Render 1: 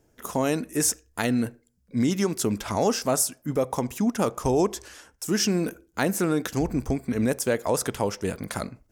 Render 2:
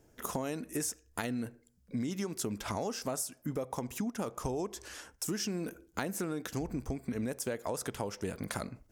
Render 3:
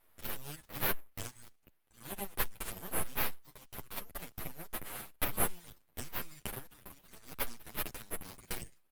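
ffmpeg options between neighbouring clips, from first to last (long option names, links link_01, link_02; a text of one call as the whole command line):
ffmpeg -i in.wav -af "acompressor=threshold=-33dB:ratio=6" out.wav
ffmpeg -i in.wav -filter_complex "[0:a]asuperpass=centerf=5500:order=4:qfactor=1.4,aeval=exprs='abs(val(0))':channel_layout=same,asplit=2[link_01][link_02];[link_02]adelay=8.7,afreqshift=-0.69[link_03];[link_01][link_03]amix=inputs=2:normalize=1,volume=14.5dB" out.wav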